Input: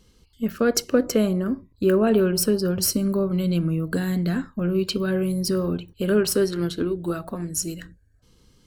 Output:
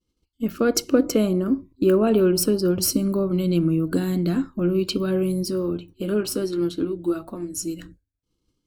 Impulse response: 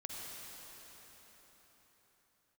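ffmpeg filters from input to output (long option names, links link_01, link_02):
-filter_complex "[0:a]agate=range=-33dB:threshold=-44dB:ratio=3:detection=peak,asplit=3[link_01][link_02][link_03];[link_01]afade=type=out:start_time=5.43:duration=0.02[link_04];[link_02]flanger=delay=8.5:depth=1.6:regen=-46:speed=1.1:shape=triangular,afade=type=in:start_time=5.43:duration=0.02,afade=type=out:start_time=7.78:duration=0.02[link_05];[link_03]afade=type=in:start_time=7.78:duration=0.02[link_06];[link_04][link_05][link_06]amix=inputs=3:normalize=0,superequalizer=6b=2.51:11b=0.501"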